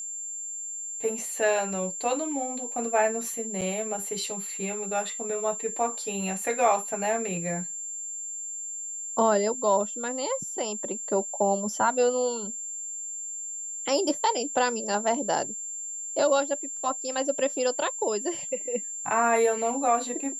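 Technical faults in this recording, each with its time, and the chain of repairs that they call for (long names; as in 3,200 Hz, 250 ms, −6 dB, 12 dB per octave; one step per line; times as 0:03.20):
whistle 7,300 Hz −33 dBFS
0:03.61–0:03.62: drop-out 6.5 ms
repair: notch filter 7,300 Hz, Q 30
repair the gap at 0:03.61, 6.5 ms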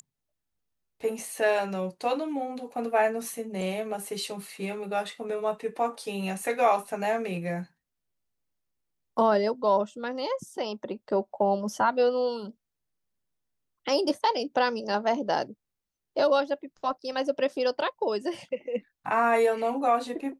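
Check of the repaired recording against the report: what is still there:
none of them is left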